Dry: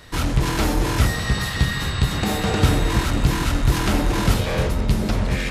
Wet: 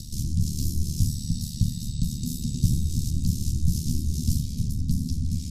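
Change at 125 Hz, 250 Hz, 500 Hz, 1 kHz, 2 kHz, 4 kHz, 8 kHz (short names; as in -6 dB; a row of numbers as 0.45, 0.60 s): -4.0 dB, -6.5 dB, under -25 dB, under -40 dB, under -35 dB, -12.0 dB, -3.5 dB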